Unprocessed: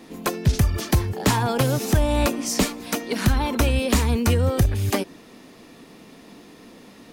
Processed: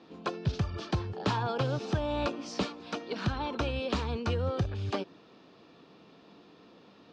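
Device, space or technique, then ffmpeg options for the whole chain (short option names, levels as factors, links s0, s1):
guitar cabinet: -af "highpass=94,equalizer=f=240:t=q:w=4:g=-7,equalizer=f=1300:t=q:w=4:g=3,equalizer=f=2000:t=q:w=4:g=-9,lowpass=f=4600:w=0.5412,lowpass=f=4600:w=1.3066,volume=0.398"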